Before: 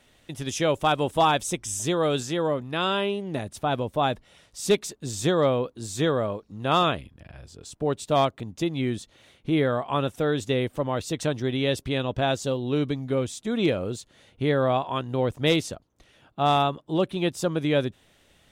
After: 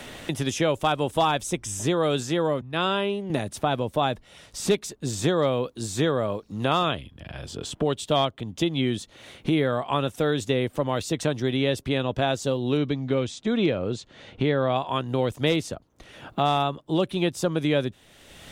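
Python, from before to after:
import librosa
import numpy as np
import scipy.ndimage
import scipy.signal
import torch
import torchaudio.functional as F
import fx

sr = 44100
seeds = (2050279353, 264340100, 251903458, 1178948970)

y = fx.band_widen(x, sr, depth_pct=70, at=(2.61, 3.3))
y = fx.peak_eq(y, sr, hz=3200.0, db=9.5, octaves=0.35, at=(6.9, 8.98))
y = fx.air_absorb(y, sr, metres=120.0, at=(12.77, 14.76))
y = fx.band_squash(y, sr, depth_pct=70)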